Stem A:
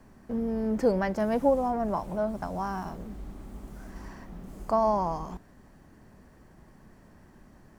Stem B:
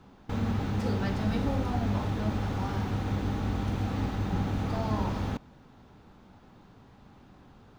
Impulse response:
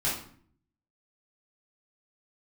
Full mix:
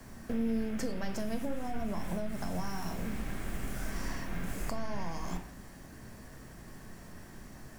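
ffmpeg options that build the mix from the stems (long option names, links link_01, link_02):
-filter_complex "[0:a]highshelf=frequency=2700:gain=11,acompressor=threshold=-34dB:ratio=6,volume=2dB,asplit=2[link_01][link_02];[link_02]volume=-14dB[link_03];[1:a]highpass=frequency=580:width=0.5412,highpass=frequency=580:width=1.3066,aeval=exprs='abs(val(0))':channel_layout=same,lowpass=frequency=2800:width=0.5412,lowpass=frequency=2800:width=1.3066,volume=-6.5dB,asplit=2[link_04][link_05];[link_05]volume=-5.5dB[link_06];[2:a]atrim=start_sample=2205[link_07];[link_03][link_06]amix=inputs=2:normalize=0[link_08];[link_08][link_07]afir=irnorm=-1:irlink=0[link_09];[link_01][link_04][link_09]amix=inputs=3:normalize=0,acrossover=split=310|3000[link_10][link_11][link_12];[link_11]acompressor=threshold=-40dB:ratio=6[link_13];[link_10][link_13][link_12]amix=inputs=3:normalize=0"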